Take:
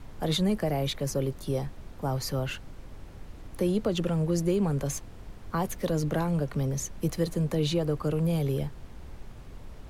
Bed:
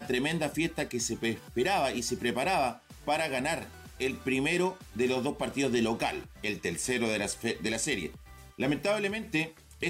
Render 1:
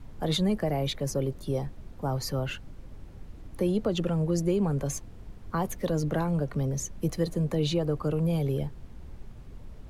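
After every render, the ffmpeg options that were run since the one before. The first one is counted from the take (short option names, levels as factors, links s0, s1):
-af "afftdn=nr=6:nf=-46"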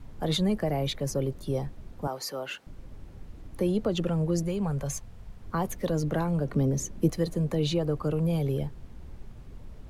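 -filter_complex "[0:a]asettb=1/sr,asplit=3[s0][s1][s2];[s0]atrim=end=2.074[s3];[s1]atrim=start=2.07:end=2.67,asetpts=PTS-STARTPTS,afade=t=in:d=0.004:c=qsin,afade=t=out:st=0.596:d=0.004:c=qsin,highpass=400[s4];[s2]atrim=start=2.666[s5];[s3][s4]acrossfade=d=0.004:c1=hsin:c2=qsin[s6];[s6][s5]acrossfade=d=0.004:c1=qsin:c2=hsin,asettb=1/sr,asplit=3[s7][s8][s9];[s7]atrim=end=4.434[s10];[s8]atrim=start=4.43:end=5.4,asetpts=PTS-STARTPTS,afade=t=in:d=0.004:c=qsin,afade=t=out:st=0.966:d=0.004:c=qsin,equalizer=f=320:t=o:w=0.75:g=-11[s11];[s9]atrim=start=5.396[s12];[s10][s11]acrossfade=d=0.004:c1=hsin:c2=qsin[s13];[s13][s12]acrossfade=d=0.004:c1=qsin:c2=hsin,asettb=1/sr,asplit=3[s14][s15][s16];[s14]atrim=end=6.454[s17];[s15]atrim=start=6.45:end=7.1,asetpts=PTS-STARTPTS,afade=t=in:d=0.004:c=qsin,afade=t=out:st=0.646:d=0.004:c=qsin,equalizer=f=290:w=0.93:g=7.5[s18];[s16]atrim=start=7.096[s19];[s17][s18]acrossfade=d=0.004:c1=hsin:c2=qsin[s20];[s20][s19]acrossfade=d=0.004:c1=qsin:c2=hsin"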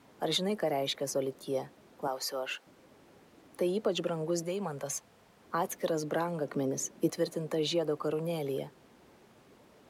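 -af "highpass=330"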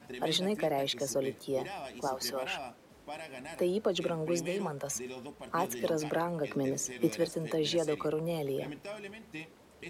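-filter_complex "[1:a]volume=0.2[s0];[0:a][s0]amix=inputs=2:normalize=0"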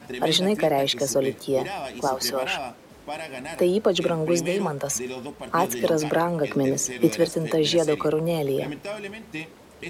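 -af "volume=2.99"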